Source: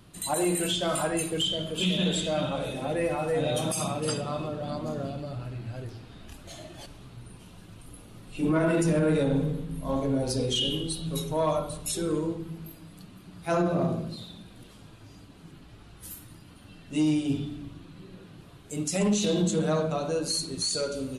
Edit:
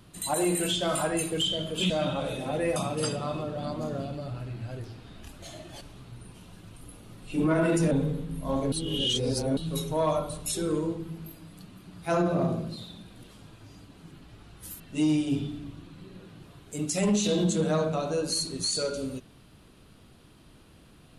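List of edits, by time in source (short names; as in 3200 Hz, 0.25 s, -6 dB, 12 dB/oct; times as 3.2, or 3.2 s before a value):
1.9–2.26 cut
3.12–3.81 cut
8.96–9.31 cut
10.12–10.97 reverse
16.2–16.78 cut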